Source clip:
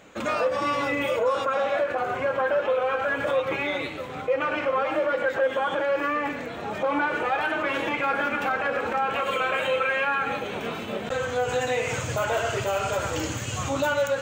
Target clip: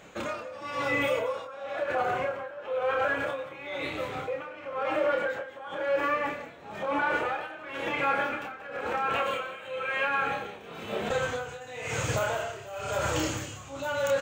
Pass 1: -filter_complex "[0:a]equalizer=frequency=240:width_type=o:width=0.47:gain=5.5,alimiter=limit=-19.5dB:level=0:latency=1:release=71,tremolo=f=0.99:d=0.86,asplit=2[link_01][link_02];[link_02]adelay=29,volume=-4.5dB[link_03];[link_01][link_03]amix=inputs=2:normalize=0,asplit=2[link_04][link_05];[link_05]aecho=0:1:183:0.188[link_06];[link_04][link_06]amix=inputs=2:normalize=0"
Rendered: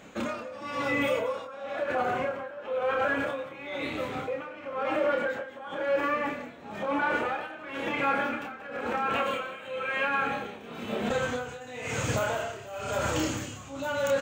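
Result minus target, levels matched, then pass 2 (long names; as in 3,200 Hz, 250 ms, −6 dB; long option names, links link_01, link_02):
250 Hz band +4.0 dB
-filter_complex "[0:a]equalizer=frequency=240:width_type=o:width=0.47:gain=-4.5,alimiter=limit=-19.5dB:level=0:latency=1:release=71,tremolo=f=0.99:d=0.86,asplit=2[link_01][link_02];[link_02]adelay=29,volume=-4.5dB[link_03];[link_01][link_03]amix=inputs=2:normalize=0,asplit=2[link_04][link_05];[link_05]aecho=0:1:183:0.188[link_06];[link_04][link_06]amix=inputs=2:normalize=0"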